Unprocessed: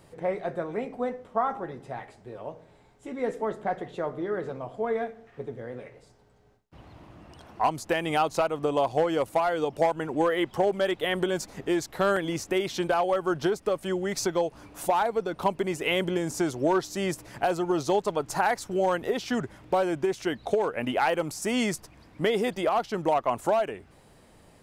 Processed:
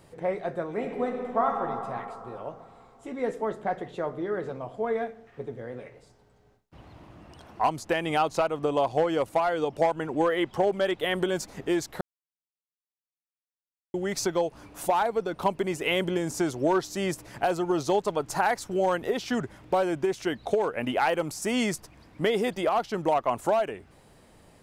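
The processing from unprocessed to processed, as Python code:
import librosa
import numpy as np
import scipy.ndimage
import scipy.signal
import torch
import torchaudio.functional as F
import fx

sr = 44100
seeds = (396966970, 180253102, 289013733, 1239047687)

y = fx.reverb_throw(x, sr, start_s=0.69, length_s=0.93, rt60_s=3.0, drr_db=1.5)
y = fx.high_shelf(y, sr, hz=11000.0, db=-7.0, at=(7.75, 10.99))
y = fx.edit(y, sr, fx.silence(start_s=12.01, length_s=1.93), tone=tone)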